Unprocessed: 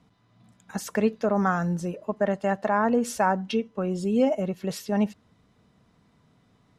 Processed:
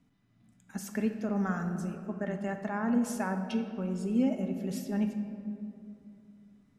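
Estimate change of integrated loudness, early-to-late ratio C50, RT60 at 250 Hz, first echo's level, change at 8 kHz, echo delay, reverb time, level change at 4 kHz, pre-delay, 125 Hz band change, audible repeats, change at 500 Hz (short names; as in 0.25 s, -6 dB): -6.5 dB, 7.0 dB, 3.0 s, none, -6.5 dB, none, 2.6 s, -9.5 dB, 3 ms, -4.5 dB, none, -11.5 dB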